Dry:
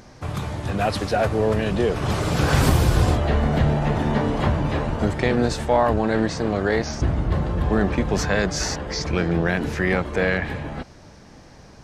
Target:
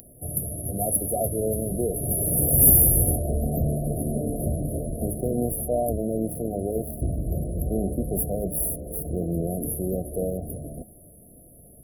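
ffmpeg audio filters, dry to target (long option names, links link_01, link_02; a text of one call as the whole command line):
ffmpeg -i in.wav -af "bandreject=frequency=105.6:width_type=h:width=4,bandreject=frequency=211.2:width_type=h:width=4,bandreject=frequency=316.8:width_type=h:width=4,bandreject=frequency=422.4:width_type=h:width=4,bandreject=frequency=528:width_type=h:width=4,bandreject=frequency=633.6:width_type=h:width=4,bandreject=frequency=739.2:width_type=h:width=4,bandreject=frequency=844.8:width_type=h:width=4,bandreject=frequency=950.4:width_type=h:width=4,bandreject=frequency=1056:width_type=h:width=4,bandreject=frequency=1161.6:width_type=h:width=4,bandreject=frequency=1267.2:width_type=h:width=4,bandreject=frequency=1372.8:width_type=h:width=4,bandreject=frequency=1478.4:width_type=h:width=4,bandreject=frequency=1584:width_type=h:width=4,bandreject=frequency=1689.6:width_type=h:width=4,bandreject=frequency=1795.2:width_type=h:width=4,bandreject=frequency=1900.8:width_type=h:width=4,bandreject=frequency=2006.4:width_type=h:width=4,bandreject=frequency=2112:width_type=h:width=4,bandreject=frequency=2217.6:width_type=h:width=4,bandreject=frequency=2323.2:width_type=h:width=4,bandreject=frequency=2428.8:width_type=h:width=4,bandreject=frequency=2534.4:width_type=h:width=4,bandreject=frequency=2640:width_type=h:width=4,bandreject=frequency=2745.6:width_type=h:width=4,bandreject=frequency=2851.2:width_type=h:width=4,bandreject=frequency=2956.8:width_type=h:width=4,bandreject=frequency=3062.4:width_type=h:width=4,bandreject=frequency=3168:width_type=h:width=4,bandreject=frequency=3273.6:width_type=h:width=4,bandreject=frequency=3379.2:width_type=h:width=4,bandreject=frequency=3484.8:width_type=h:width=4,bandreject=frequency=3590.4:width_type=h:width=4,bandreject=frequency=3696:width_type=h:width=4,bandreject=frequency=3801.6:width_type=h:width=4,bandreject=frequency=3907.2:width_type=h:width=4,bandreject=frequency=4012.8:width_type=h:width=4,bandreject=frequency=4118.4:width_type=h:width=4,aexciter=amount=12.5:drive=9.1:freq=2400,afftfilt=real='re*(1-between(b*sr/4096,740,10000))':imag='im*(1-between(b*sr/4096,740,10000))':win_size=4096:overlap=0.75,volume=-5dB" out.wav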